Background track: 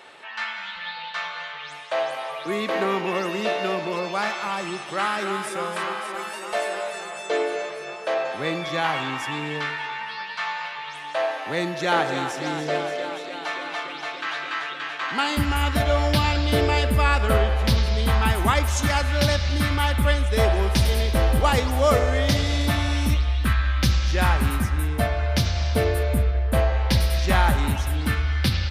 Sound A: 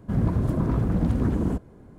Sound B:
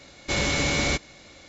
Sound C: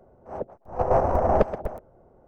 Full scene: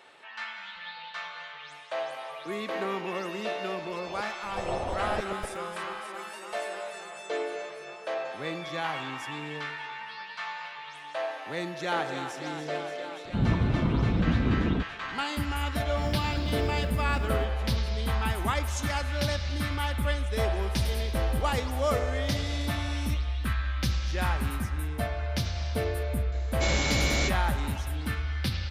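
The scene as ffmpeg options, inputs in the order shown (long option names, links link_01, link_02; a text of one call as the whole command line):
ffmpeg -i bed.wav -i cue0.wav -i cue1.wav -i cue2.wav -filter_complex "[1:a]asplit=2[link_01][link_02];[0:a]volume=-8dB[link_03];[3:a]alimiter=limit=-15.5dB:level=0:latency=1:release=71[link_04];[link_01]lowpass=2100[link_05];[link_02]acrusher=bits=6:mode=log:mix=0:aa=0.000001[link_06];[link_04]atrim=end=2.27,asetpts=PTS-STARTPTS,volume=-7.5dB,afade=type=in:duration=0.004:curve=hsin,afade=type=out:start_time=2.266:duration=0.004:curve=hsin,adelay=3780[link_07];[link_05]atrim=end=1.98,asetpts=PTS-STARTPTS,volume=-2dB,afade=type=in:duration=0.004:curve=hsin,afade=type=out:start_time=1.976:duration=0.004:curve=hsin,adelay=13250[link_08];[link_06]atrim=end=1.98,asetpts=PTS-STARTPTS,volume=-13dB,afade=type=in:duration=0.004:curve=hsin,afade=type=out:start_time=1.976:duration=0.004:curve=hsin,adelay=700308S[link_09];[2:a]atrim=end=1.48,asetpts=PTS-STARTPTS,volume=-3.5dB,afade=type=in:duration=0.004:curve=hsin,afade=type=out:start_time=1.476:duration=0.004:curve=hsin,adelay=1160712S[link_10];[link_03][link_07][link_08][link_09][link_10]amix=inputs=5:normalize=0" out.wav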